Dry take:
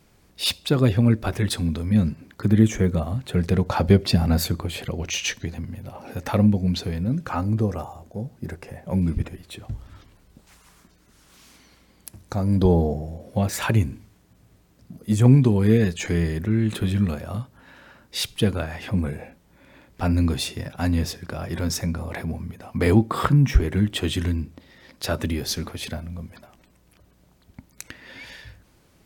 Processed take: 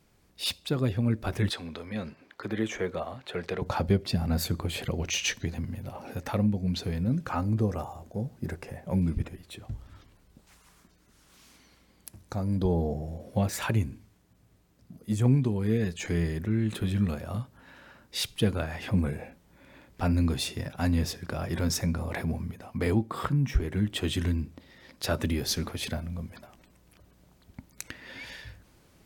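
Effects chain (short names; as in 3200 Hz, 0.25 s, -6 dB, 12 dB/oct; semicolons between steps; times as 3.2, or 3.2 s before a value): 1.5–3.62 three-band isolator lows -19 dB, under 380 Hz, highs -13 dB, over 4900 Hz; vocal rider within 4 dB 0.5 s; gain -5.5 dB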